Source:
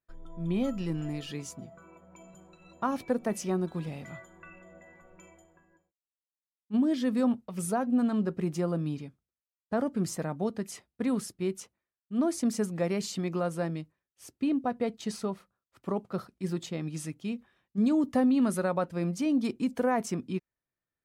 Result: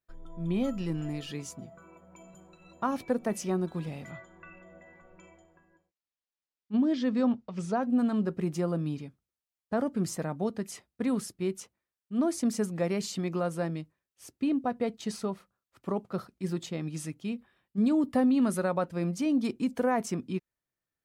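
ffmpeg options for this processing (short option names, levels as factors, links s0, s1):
-filter_complex "[0:a]asettb=1/sr,asplit=3[s0][s1][s2];[s0]atrim=end=4.114[s3];[s1]atrim=start=4.11:end=7.83,asetpts=PTS-STARTPTS,afade=t=in:d=0.004:c=qsin,afade=t=out:st=3.716:d=0.004:c=qsin,lowpass=f=6200:w=0.5412,lowpass=f=6200:w=1.3066[s4];[s2]atrim=start=7.826[s5];[s3][s4]acrossfade=d=0.004:c1=hsin:c2=qsin[s6];[s6][s5]acrossfade=d=0.004:c1=qsin:c2=hsin,asettb=1/sr,asplit=3[s7][s8][s9];[s7]atrim=end=17.244[s10];[s8]atrim=start=17.24:end=18.19,asetpts=PTS-STARTPTS,afade=t=in:d=0.004:c=qsin,afade=t=out:st=0.946:d=0.004:c=qsin,equalizer=f=6300:w=6.8:g=-12[s11];[s9]atrim=start=18.186[s12];[s10][s11]acrossfade=d=0.004:c1=hsin:c2=qsin[s13];[s13][s12]acrossfade=d=0.004:c1=qsin:c2=hsin"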